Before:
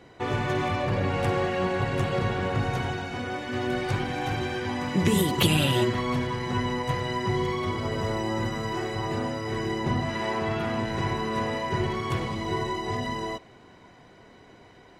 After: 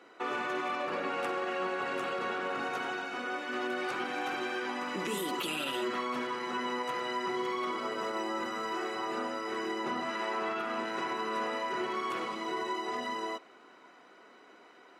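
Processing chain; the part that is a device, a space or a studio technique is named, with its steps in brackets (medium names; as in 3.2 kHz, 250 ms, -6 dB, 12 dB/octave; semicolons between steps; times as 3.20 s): laptop speaker (high-pass 260 Hz 24 dB/octave; peaking EQ 1.3 kHz +12 dB 0.35 oct; peaking EQ 2.6 kHz +5 dB 0.2 oct; peak limiter -20 dBFS, peak gain reduction 12.5 dB); trim -5 dB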